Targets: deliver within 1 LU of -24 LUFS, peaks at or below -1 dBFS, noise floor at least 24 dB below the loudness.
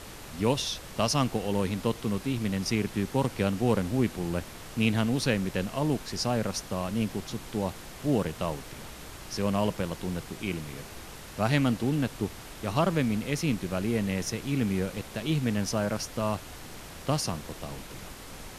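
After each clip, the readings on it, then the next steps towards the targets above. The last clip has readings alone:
noise floor -44 dBFS; noise floor target -54 dBFS; loudness -29.5 LUFS; peak -10.5 dBFS; loudness target -24.0 LUFS
-> noise print and reduce 10 dB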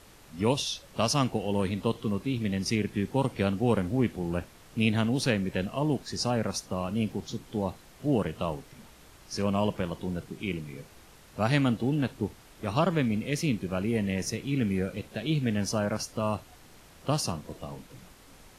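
noise floor -54 dBFS; loudness -29.5 LUFS; peak -10.5 dBFS; loudness target -24.0 LUFS
-> gain +5.5 dB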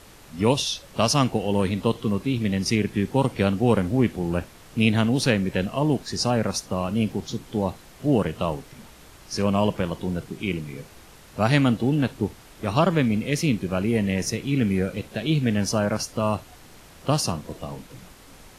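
loudness -24.0 LUFS; peak -5.0 dBFS; noise floor -48 dBFS

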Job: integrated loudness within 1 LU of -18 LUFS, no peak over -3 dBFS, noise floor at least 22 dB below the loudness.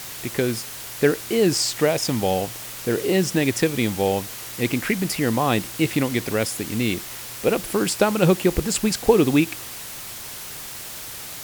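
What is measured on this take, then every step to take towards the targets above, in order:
noise floor -36 dBFS; noise floor target -45 dBFS; loudness -22.5 LUFS; peak -2.5 dBFS; loudness target -18.0 LUFS
-> noise print and reduce 9 dB; gain +4.5 dB; limiter -3 dBFS

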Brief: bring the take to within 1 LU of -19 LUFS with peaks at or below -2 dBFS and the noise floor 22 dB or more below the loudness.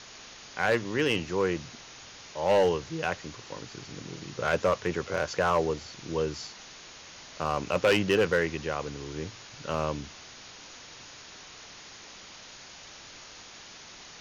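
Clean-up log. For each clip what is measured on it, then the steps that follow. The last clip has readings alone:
clipped 0.4%; flat tops at -17.0 dBFS; noise floor -48 dBFS; noise floor target -51 dBFS; loudness -29.0 LUFS; peak -17.0 dBFS; loudness target -19.0 LUFS
-> clip repair -17 dBFS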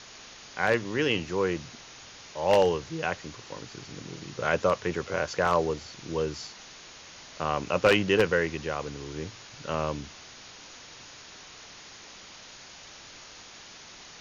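clipped 0.0%; noise floor -48 dBFS; noise floor target -50 dBFS
-> denoiser 6 dB, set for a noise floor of -48 dBFS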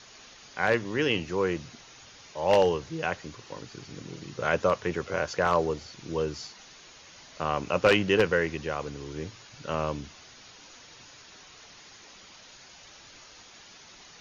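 noise floor -51 dBFS; loudness -28.0 LUFS; peak -8.0 dBFS; loudness target -19.0 LUFS
-> gain +9 dB; limiter -2 dBFS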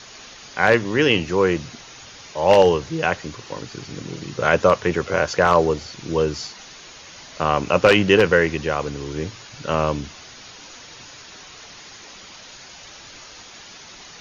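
loudness -19.5 LUFS; peak -2.0 dBFS; noise floor -42 dBFS

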